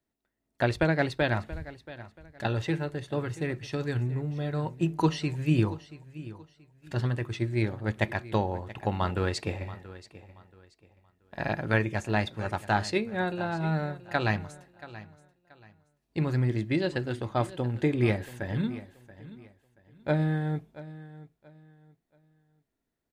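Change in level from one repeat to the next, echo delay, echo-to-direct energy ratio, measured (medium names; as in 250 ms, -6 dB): -11.0 dB, 680 ms, -16.5 dB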